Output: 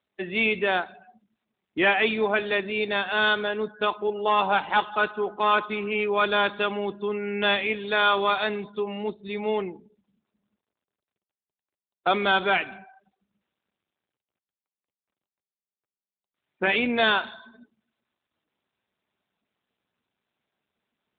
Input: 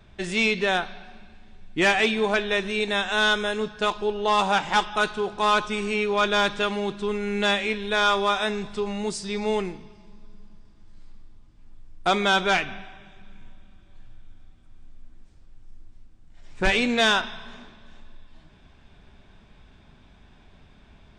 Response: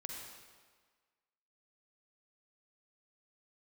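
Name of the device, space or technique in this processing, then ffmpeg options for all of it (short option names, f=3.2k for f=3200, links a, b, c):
mobile call with aggressive noise cancelling: -filter_complex "[0:a]highpass=170,asplit=3[a][b][c];[a]afade=t=out:st=7.36:d=0.02[d];[b]highshelf=f=2.3k:g=2.5,afade=t=in:st=7.36:d=0.02,afade=t=out:st=9.13:d=0.02[e];[c]afade=t=in:st=9.13:d=0.02[f];[d][e][f]amix=inputs=3:normalize=0,highpass=180,afftdn=nr=36:nf=-38" -ar 8000 -c:a libopencore_amrnb -b:a 12200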